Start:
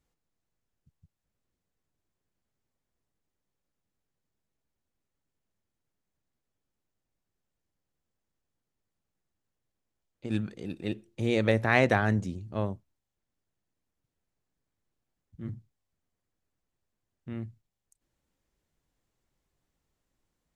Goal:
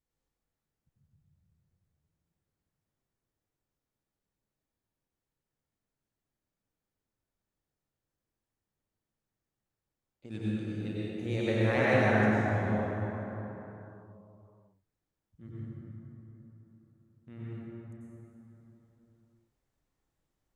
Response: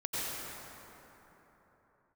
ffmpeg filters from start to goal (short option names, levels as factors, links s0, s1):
-filter_complex "[1:a]atrim=start_sample=2205[s0];[0:a][s0]afir=irnorm=-1:irlink=0,volume=0.398"